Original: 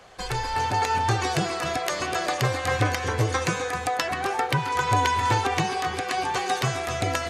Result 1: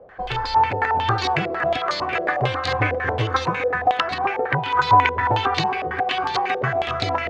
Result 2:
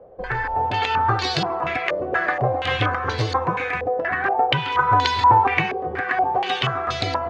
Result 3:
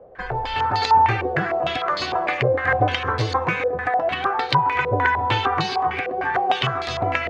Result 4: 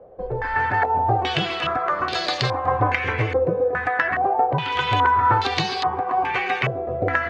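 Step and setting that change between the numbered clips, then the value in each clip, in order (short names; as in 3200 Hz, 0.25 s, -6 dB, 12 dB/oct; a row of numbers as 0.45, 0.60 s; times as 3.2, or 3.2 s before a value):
stepped low-pass, rate: 11, 4.2, 6.6, 2.4 Hz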